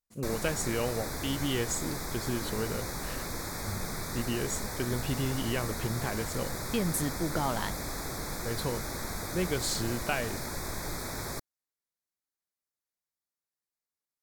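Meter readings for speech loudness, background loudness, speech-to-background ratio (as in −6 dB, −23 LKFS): −34.0 LKFS, −36.5 LKFS, 2.5 dB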